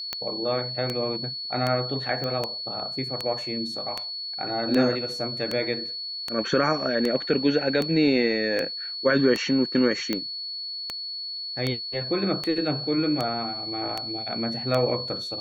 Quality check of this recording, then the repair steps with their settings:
tick 78 rpm -12 dBFS
tone 4400 Hz -31 dBFS
2.24 pop -18 dBFS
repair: de-click; notch 4400 Hz, Q 30

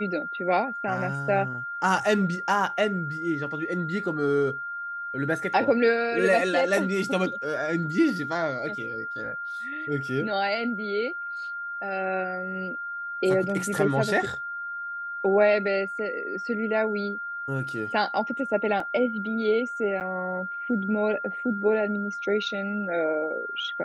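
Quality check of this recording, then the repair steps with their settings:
tone 1400 Hz -31 dBFS
18.8 gap 3.1 ms
20–20.01 gap 9 ms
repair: notch 1400 Hz, Q 30; interpolate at 18.8, 3.1 ms; interpolate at 20, 9 ms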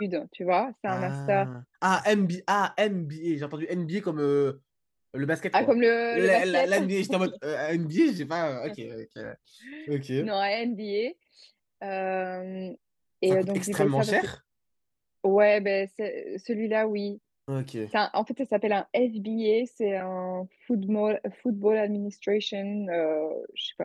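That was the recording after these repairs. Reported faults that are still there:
none

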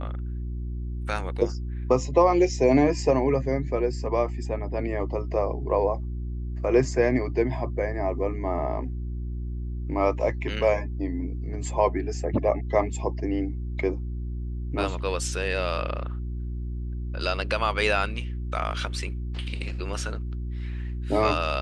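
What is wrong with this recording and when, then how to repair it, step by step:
hum 60 Hz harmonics 6 -31 dBFS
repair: de-hum 60 Hz, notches 6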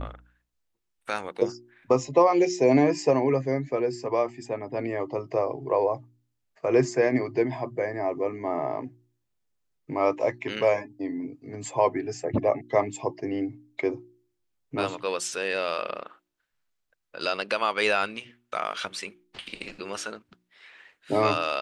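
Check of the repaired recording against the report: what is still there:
none

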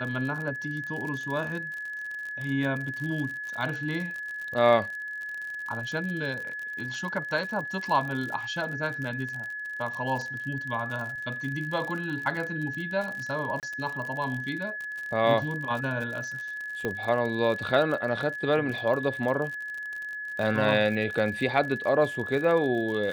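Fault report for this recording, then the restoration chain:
crackle 53/s -33 dBFS
tone 1700 Hz -33 dBFS
13.6–13.63 gap 28 ms
16.85 pop -17 dBFS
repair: de-click; notch 1700 Hz, Q 30; interpolate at 13.6, 28 ms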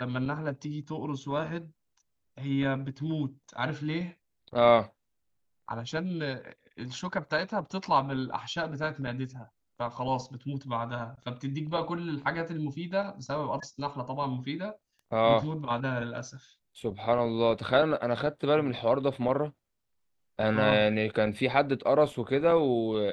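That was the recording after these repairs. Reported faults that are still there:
none

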